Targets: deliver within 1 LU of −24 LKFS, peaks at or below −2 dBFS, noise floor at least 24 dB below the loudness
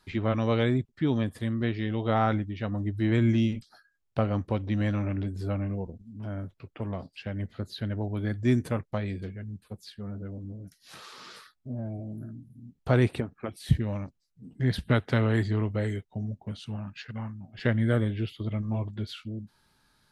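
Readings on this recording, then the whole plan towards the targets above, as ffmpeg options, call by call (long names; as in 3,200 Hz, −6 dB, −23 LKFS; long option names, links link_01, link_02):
integrated loudness −29.5 LKFS; sample peak −8.5 dBFS; target loudness −24.0 LKFS
→ -af "volume=5.5dB"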